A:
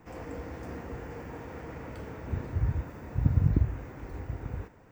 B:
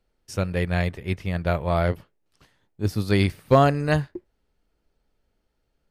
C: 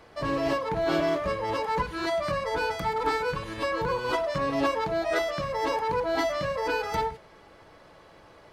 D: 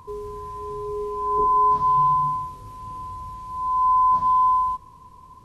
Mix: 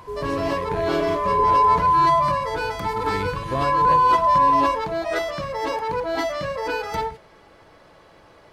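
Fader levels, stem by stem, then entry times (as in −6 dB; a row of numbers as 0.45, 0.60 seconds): −14.0, −11.0, +2.0, +1.5 decibels; 0.00, 0.00, 0.00, 0.00 seconds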